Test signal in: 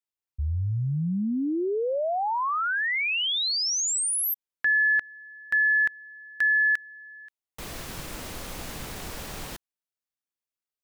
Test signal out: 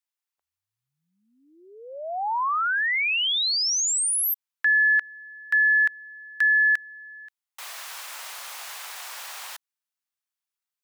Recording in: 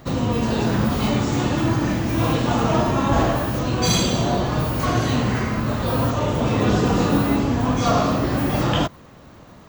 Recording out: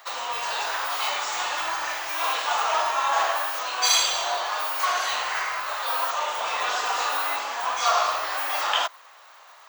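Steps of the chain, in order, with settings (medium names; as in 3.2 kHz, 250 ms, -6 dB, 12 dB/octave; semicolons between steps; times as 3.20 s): high-pass 810 Hz 24 dB/octave; trim +2.5 dB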